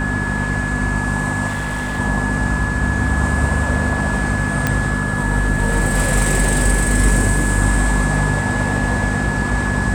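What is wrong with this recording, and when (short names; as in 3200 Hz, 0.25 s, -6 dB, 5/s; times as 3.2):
hum 50 Hz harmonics 5 -22 dBFS
tone 1700 Hz -23 dBFS
1.47–2 clipped -19 dBFS
4.67 pop -3 dBFS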